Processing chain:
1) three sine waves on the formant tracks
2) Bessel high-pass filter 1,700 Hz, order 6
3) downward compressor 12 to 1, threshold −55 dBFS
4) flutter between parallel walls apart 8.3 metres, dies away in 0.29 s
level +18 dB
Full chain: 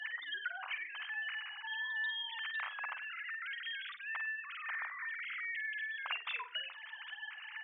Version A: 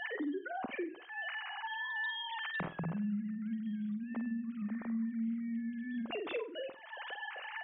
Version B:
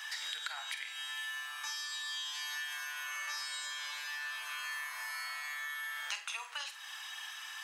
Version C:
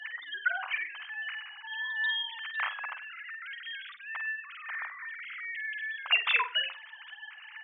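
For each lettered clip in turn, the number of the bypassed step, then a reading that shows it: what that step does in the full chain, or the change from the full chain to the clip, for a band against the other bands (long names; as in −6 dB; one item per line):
2, change in crest factor −4.5 dB
1, change in crest factor +5.0 dB
3, average gain reduction 3.0 dB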